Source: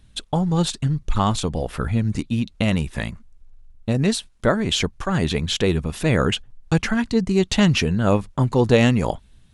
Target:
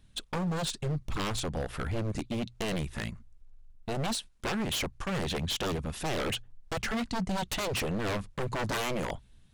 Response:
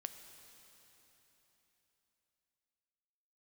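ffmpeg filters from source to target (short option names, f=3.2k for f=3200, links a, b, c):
-af "aeval=exprs='0.106*(abs(mod(val(0)/0.106+3,4)-2)-1)':c=same,bandreject=f=60:t=h:w=6,bandreject=f=120:t=h:w=6,volume=-6.5dB"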